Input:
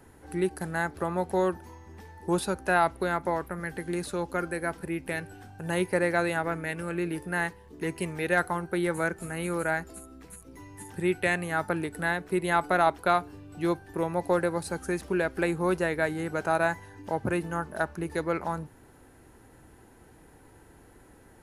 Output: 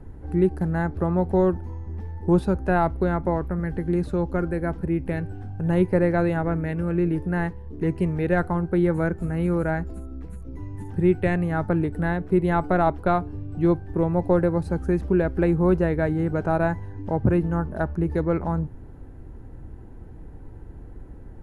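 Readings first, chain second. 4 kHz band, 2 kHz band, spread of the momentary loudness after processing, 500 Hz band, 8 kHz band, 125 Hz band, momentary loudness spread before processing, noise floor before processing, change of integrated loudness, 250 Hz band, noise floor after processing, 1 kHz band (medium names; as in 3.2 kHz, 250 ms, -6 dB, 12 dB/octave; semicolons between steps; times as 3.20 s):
no reading, -3.5 dB, 12 LU, +5.0 dB, under -10 dB, +12.0 dB, 12 LU, -55 dBFS, +5.0 dB, +8.5 dB, -41 dBFS, +0.5 dB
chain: tilt EQ -4.5 dB/octave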